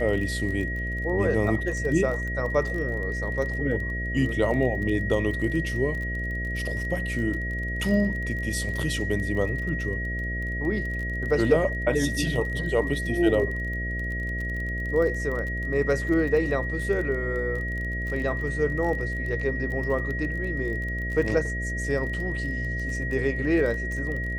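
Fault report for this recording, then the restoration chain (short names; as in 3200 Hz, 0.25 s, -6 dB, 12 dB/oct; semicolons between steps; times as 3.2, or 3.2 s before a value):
buzz 60 Hz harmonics 11 -31 dBFS
crackle 23/s -32 dBFS
tone 1900 Hz -31 dBFS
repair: de-click; de-hum 60 Hz, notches 11; notch 1900 Hz, Q 30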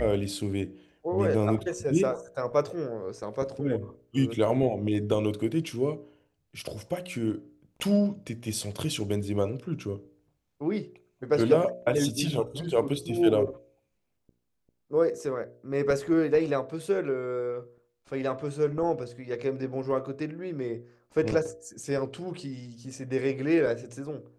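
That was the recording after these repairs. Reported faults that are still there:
none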